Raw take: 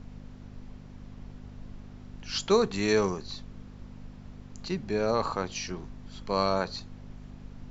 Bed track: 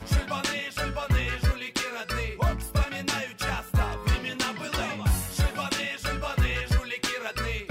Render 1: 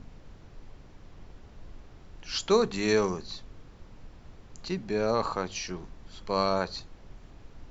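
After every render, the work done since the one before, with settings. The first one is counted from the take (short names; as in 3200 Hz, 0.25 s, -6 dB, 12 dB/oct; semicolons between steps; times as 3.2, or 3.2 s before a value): de-hum 50 Hz, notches 5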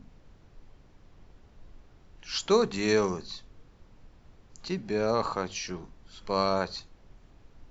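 noise print and reduce 6 dB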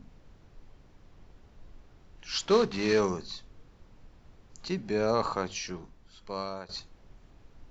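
2.41–3 CVSD 32 kbps; 5.47–6.69 fade out, to -15.5 dB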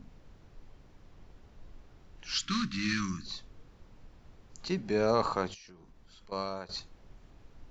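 2.34–3.26 inverse Chebyshev band-stop 410–860 Hz; 5.54–6.32 compressor, threshold -51 dBFS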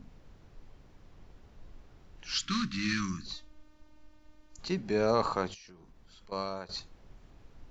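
3.33–4.59 robotiser 304 Hz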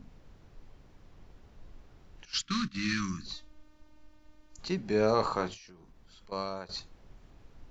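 2.25–2.95 gate -36 dBFS, range -13 dB; 4.87–5.65 doubler 28 ms -10 dB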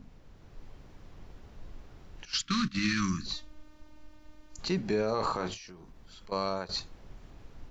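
AGC gain up to 5 dB; limiter -19.5 dBFS, peak gain reduction 10.5 dB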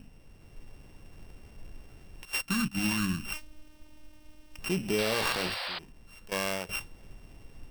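sample sorter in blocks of 16 samples; 4.98–5.79 painted sound noise 490–5000 Hz -36 dBFS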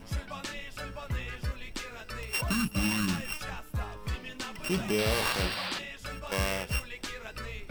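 add bed track -10 dB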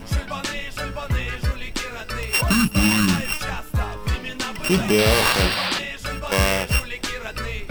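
gain +11 dB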